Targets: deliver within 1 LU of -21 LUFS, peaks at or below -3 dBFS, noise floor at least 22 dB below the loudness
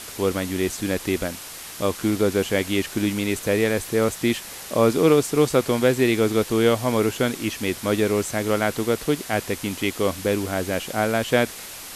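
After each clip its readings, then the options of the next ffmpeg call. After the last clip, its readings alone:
noise floor -38 dBFS; noise floor target -45 dBFS; loudness -22.5 LUFS; peak -5.0 dBFS; loudness target -21.0 LUFS
-> -af "afftdn=nr=7:nf=-38"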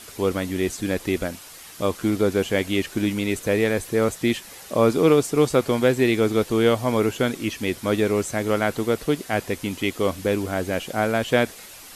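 noise floor -43 dBFS; noise floor target -45 dBFS
-> -af "afftdn=nr=6:nf=-43"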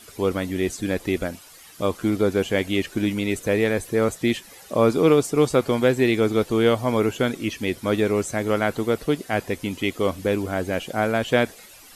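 noise floor -47 dBFS; loudness -23.0 LUFS; peak -5.5 dBFS; loudness target -21.0 LUFS
-> -af "volume=2dB"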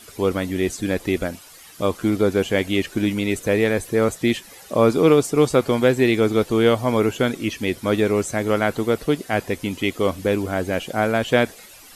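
loudness -21.0 LUFS; peak -3.5 dBFS; noise floor -45 dBFS

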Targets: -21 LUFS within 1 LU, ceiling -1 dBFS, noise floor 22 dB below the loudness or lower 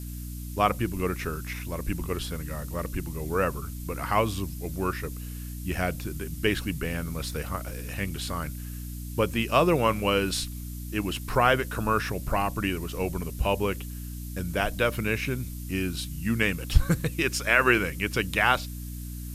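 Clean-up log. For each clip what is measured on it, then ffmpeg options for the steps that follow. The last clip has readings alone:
hum 60 Hz; harmonics up to 300 Hz; hum level -34 dBFS; noise floor -37 dBFS; noise floor target -50 dBFS; loudness -28.0 LUFS; peak -5.5 dBFS; loudness target -21.0 LUFS
-> -af "bandreject=f=60:t=h:w=6,bandreject=f=120:t=h:w=6,bandreject=f=180:t=h:w=6,bandreject=f=240:t=h:w=6,bandreject=f=300:t=h:w=6"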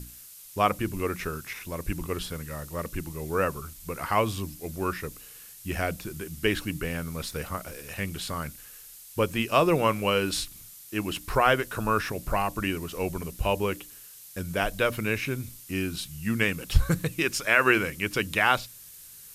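hum none; noise floor -48 dBFS; noise floor target -50 dBFS
-> -af "afftdn=nr=6:nf=-48"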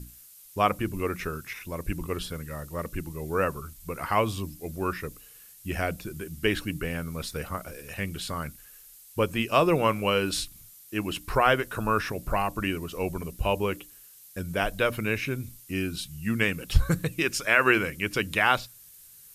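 noise floor -51 dBFS; loudness -28.0 LUFS; peak -6.0 dBFS; loudness target -21.0 LUFS
-> -af "volume=7dB,alimiter=limit=-1dB:level=0:latency=1"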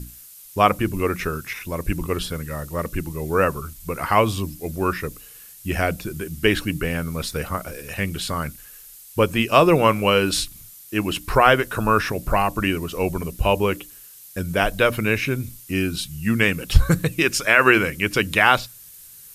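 loudness -21.5 LUFS; peak -1.0 dBFS; noise floor -44 dBFS

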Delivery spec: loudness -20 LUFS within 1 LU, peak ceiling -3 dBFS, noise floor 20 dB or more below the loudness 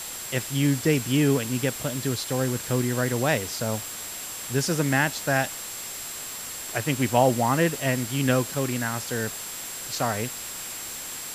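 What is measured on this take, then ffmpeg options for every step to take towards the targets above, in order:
steady tone 7600 Hz; tone level -38 dBFS; noise floor -36 dBFS; noise floor target -46 dBFS; loudness -26.0 LUFS; peak -6.0 dBFS; loudness target -20.0 LUFS
-> -af "bandreject=f=7.6k:w=30"
-af "afftdn=nr=10:nf=-36"
-af "volume=6dB,alimiter=limit=-3dB:level=0:latency=1"

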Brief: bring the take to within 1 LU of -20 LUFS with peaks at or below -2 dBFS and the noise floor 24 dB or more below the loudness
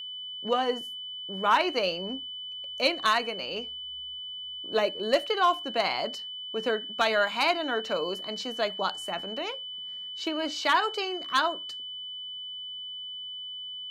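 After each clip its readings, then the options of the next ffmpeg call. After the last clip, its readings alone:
steady tone 3000 Hz; tone level -36 dBFS; loudness -29.0 LUFS; peak -13.0 dBFS; loudness target -20.0 LUFS
-> -af "bandreject=f=3k:w=30"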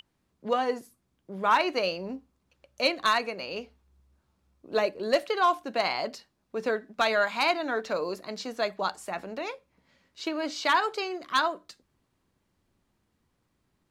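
steady tone none; loudness -28.5 LUFS; peak -12.5 dBFS; loudness target -20.0 LUFS
-> -af "volume=8.5dB"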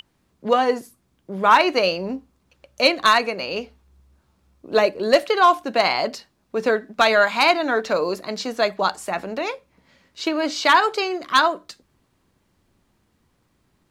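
loudness -20.0 LUFS; peak -4.0 dBFS; noise floor -67 dBFS

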